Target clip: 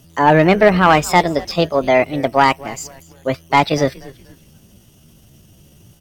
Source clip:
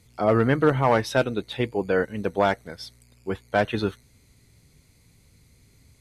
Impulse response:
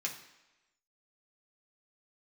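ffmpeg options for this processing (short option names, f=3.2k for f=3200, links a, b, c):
-filter_complex "[0:a]acontrast=64,asetrate=60591,aresample=44100,atempo=0.727827,asplit=4[a][b][c][d];[b]adelay=240,afreqshift=-130,volume=-20.5dB[e];[c]adelay=480,afreqshift=-260,volume=-29.4dB[f];[d]adelay=720,afreqshift=-390,volume=-38.2dB[g];[a][e][f][g]amix=inputs=4:normalize=0,volume=3dB"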